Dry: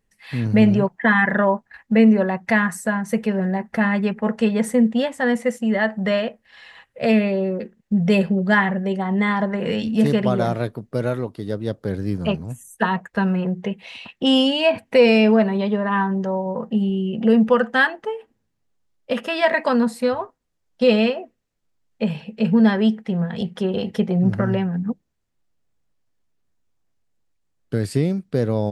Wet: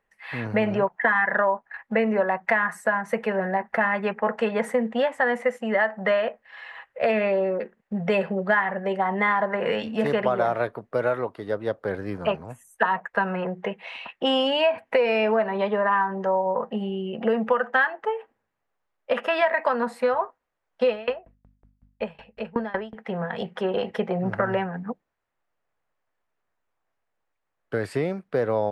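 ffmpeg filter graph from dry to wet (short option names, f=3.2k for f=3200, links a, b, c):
-filter_complex "[0:a]asettb=1/sr,asplit=3[a][b][c];[a]atrim=end=20.894[d];[b]atrim=start=20.89:end=22.95,asetpts=PTS-STARTPTS,afade=t=in:d=0.004:c=qsin,afade=t=out:st=2.056:d=0.004:c=qsin,aeval=exprs='val(0)+0.01*(sin(2*PI*50*n/s)+sin(2*PI*2*50*n/s)/2+sin(2*PI*3*50*n/s)/3+sin(2*PI*4*50*n/s)/4+sin(2*PI*5*50*n/s)/5)':c=same,aeval=exprs='val(0)*pow(10,-25*if(lt(mod(5.4*n/s,1),2*abs(5.4)/1000),1-mod(5.4*n/s,1)/(2*abs(5.4)/1000),(mod(5.4*n/s,1)-2*abs(5.4)/1000)/(1-2*abs(5.4)/1000))/20)':c=same[e];[c]atrim=start=22.946[f];[d][e]acrossfade=d=0.004:c1=hsin:c2=qsin[g];[g][f]acrossfade=d=0.004:c1=qsin:c2=hsin,acrossover=split=510 2300:gain=0.126 1 0.126[h][i][j];[h][i][j]amix=inputs=3:normalize=0,acompressor=threshold=-25dB:ratio=6,volume=7dB"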